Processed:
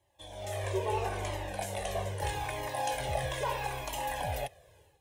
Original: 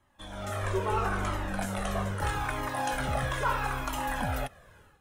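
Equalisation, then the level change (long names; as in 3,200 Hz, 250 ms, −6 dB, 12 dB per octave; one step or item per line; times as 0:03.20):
high-pass filter 68 Hz
dynamic equaliser 1,700 Hz, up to +4 dB, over −42 dBFS, Q 0.72
phaser with its sweep stopped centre 550 Hz, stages 4
0.0 dB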